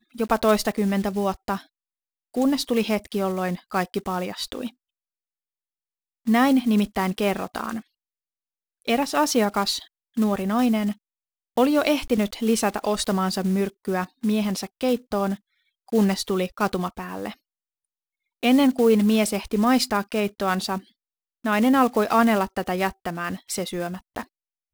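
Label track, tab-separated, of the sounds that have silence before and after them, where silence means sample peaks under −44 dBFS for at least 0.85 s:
6.260000	7.810000	sound
8.820000	17.340000	sound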